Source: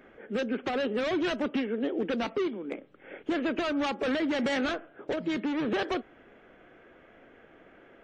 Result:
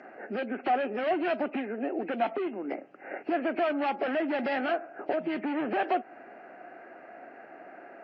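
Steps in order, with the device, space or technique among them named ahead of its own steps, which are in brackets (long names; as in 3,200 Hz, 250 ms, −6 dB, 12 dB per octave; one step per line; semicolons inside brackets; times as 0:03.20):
hearing aid with frequency lowering (hearing-aid frequency compression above 1,900 Hz 1.5 to 1; downward compressor 3 to 1, threshold −35 dBFS, peak gain reduction 7.5 dB; loudspeaker in its box 310–5,800 Hz, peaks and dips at 470 Hz −8 dB, 720 Hz +10 dB, 1,100 Hz −5 dB, 2,200 Hz −3 dB, 3,700 Hz −9 dB)
level +8 dB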